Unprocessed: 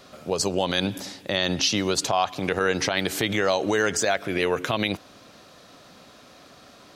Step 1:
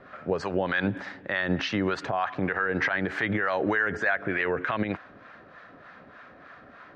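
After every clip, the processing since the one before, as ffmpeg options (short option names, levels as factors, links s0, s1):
-filter_complex "[0:a]lowpass=f=1700:t=q:w=3.4,alimiter=limit=0.2:level=0:latency=1:release=46,acrossover=split=690[s0][s1];[s0]aeval=exprs='val(0)*(1-0.7/2+0.7/2*cos(2*PI*3.3*n/s))':c=same[s2];[s1]aeval=exprs='val(0)*(1-0.7/2-0.7/2*cos(2*PI*3.3*n/s))':c=same[s3];[s2][s3]amix=inputs=2:normalize=0,volume=1.19"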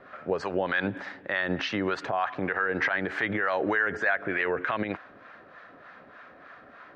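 -af "bass=f=250:g=-6,treble=f=4000:g=-3"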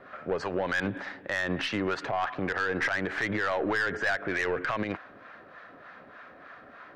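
-af "aeval=exprs='(tanh(12.6*val(0)+0.2)-tanh(0.2))/12.6':c=same,volume=1.12"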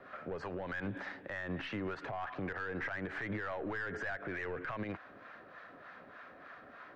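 -filter_complex "[0:a]acrossover=split=2800[s0][s1];[s1]acompressor=threshold=0.00282:ratio=4:attack=1:release=60[s2];[s0][s2]amix=inputs=2:normalize=0,acrossover=split=150[s3][s4];[s4]alimiter=level_in=1.5:limit=0.0631:level=0:latency=1:release=149,volume=0.668[s5];[s3][s5]amix=inputs=2:normalize=0,volume=0.631"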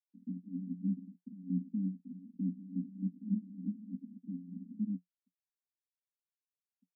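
-filter_complex "[0:a]asplit=2[s0][s1];[s1]acompressor=threshold=0.00447:ratio=6,volume=0.794[s2];[s0][s2]amix=inputs=2:normalize=0,acrusher=bits=5:mix=0:aa=0.000001,asuperpass=centerf=220:order=12:qfactor=2.3,volume=2.51"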